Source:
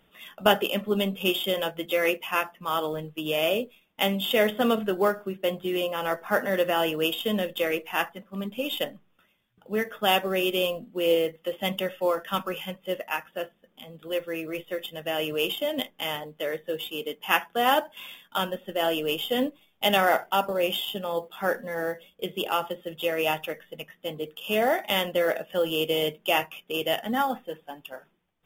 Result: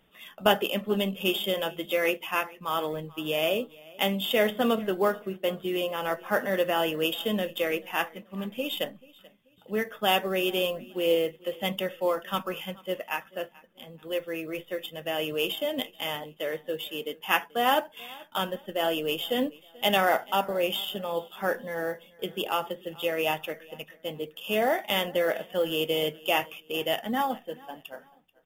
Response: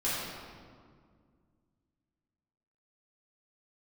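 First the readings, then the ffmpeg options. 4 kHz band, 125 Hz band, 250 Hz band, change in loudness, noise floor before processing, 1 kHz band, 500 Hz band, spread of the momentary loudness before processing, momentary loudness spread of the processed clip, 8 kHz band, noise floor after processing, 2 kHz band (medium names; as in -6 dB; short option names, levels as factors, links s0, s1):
-1.5 dB, -1.5 dB, -1.5 dB, -1.5 dB, -67 dBFS, -1.5 dB, -1.5 dB, 11 LU, 11 LU, -1.5 dB, -58 dBFS, -1.5 dB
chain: -af "bandreject=f=1400:w=28,aecho=1:1:435|870:0.0708|0.0241,volume=0.841"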